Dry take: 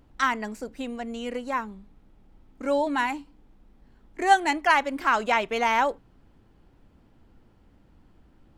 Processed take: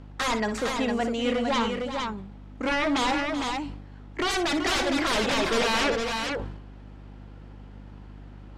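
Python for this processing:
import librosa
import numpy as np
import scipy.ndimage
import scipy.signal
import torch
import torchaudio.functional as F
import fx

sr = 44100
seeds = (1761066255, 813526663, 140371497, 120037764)

y = scipy.signal.sosfilt(scipy.signal.butter(4, 61.0, 'highpass', fs=sr, output='sos'), x)
y = fx.low_shelf(y, sr, hz=330.0, db=-7.0)
y = fx.fold_sine(y, sr, drive_db=14, ceiling_db=-14.0)
y = fx.air_absorb(y, sr, metres=75.0)
y = fx.echo_multitap(y, sr, ms=(59, 380, 457), db=(-11.5, -11.5, -4.5))
y = fx.add_hum(y, sr, base_hz=50, snr_db=17)
y = fx.sustainer(y, sr, db_per_s=57.0)
y = y * 10.0 ** (-7.5 / 20.0)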